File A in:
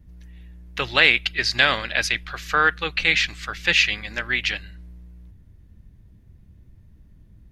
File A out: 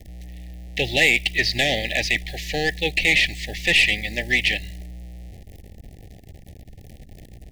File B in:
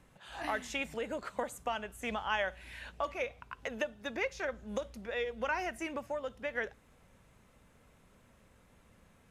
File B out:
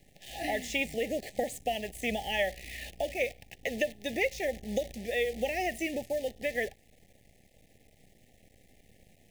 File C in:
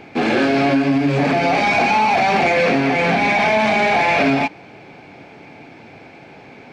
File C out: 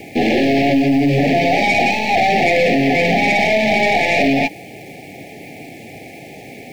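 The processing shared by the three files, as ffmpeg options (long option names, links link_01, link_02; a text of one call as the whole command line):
ffmpeg -i in.wav -filter_complex "[0:a]acrossover=split=4500[link_01][link_02];[link_02]acompressor=threshold=-42dB:ratio=4:attack=1:release=60[link_03];[link_01][link_03]amix=inputs=2:normalize=0,asplit=2[link_04][link_05];[link_05]alimiter=limit=-10dB:level=0:latency=1,volume=0dB[link_06];[link_04][link_06]amix=inputs=2:normalize=0,aeval=exprs='(tanh(2.82*val(0)+0.2)-tanh(0.2))/2.82':channel_layout=same,acrusher=bits=8:dc=4:mix=0:aa=0.000001,asuperstop=centerf=1200:order=20:qfactor=1.3" out.wav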